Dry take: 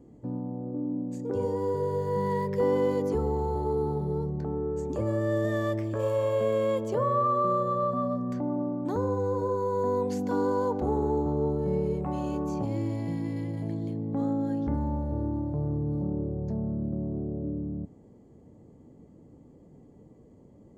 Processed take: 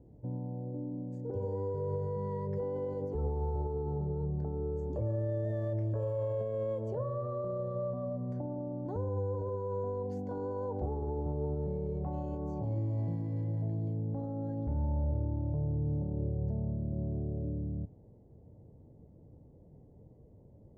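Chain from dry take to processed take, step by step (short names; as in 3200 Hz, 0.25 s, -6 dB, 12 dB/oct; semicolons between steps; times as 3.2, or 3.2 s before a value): notch 1200 Hz, Q 8.2; limiter -24 dBFS, peak gain reduction 8 dB; EQ curve 110 Hz 0 dB, 250 Hz -12 dB, 620 Hz -5 dB, 2400 Hz -22 dB, 5400 Hz -22 dB, 7800 Hz -25 dB; gain +2.5 dB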